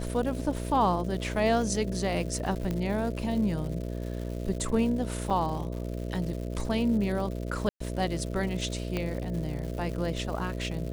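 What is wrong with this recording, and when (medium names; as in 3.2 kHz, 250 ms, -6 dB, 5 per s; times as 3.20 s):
buzz 60 Hz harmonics 11 -34 dBFS
crackle 250 per s -37 dBFS
2.71 s: pop -19 dBFS
5.30 s: dropout 4.9 ms
7.69–7.80 s: dropout 114 ms
8.97 s: pop -17 dBFS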